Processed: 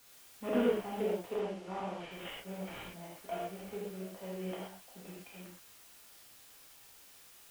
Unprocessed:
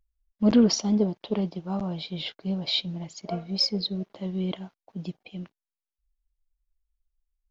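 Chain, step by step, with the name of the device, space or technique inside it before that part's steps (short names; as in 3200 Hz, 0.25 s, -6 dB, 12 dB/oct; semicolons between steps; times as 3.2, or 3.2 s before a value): army field radio (BPF 390–2800 Hz; CVSD 16 kbps; white noise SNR 18 dB); 1.28–2.11 LPF 6300 Hz 12 dB/oct; non-linear reverb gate 0.15 s flat, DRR -5.5 dB; gain -8.5 dB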